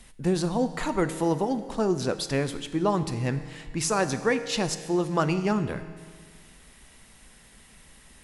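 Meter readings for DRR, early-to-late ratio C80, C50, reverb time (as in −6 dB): 10.0 dB, 12.5 dB, 11.5 dB, 1.8 s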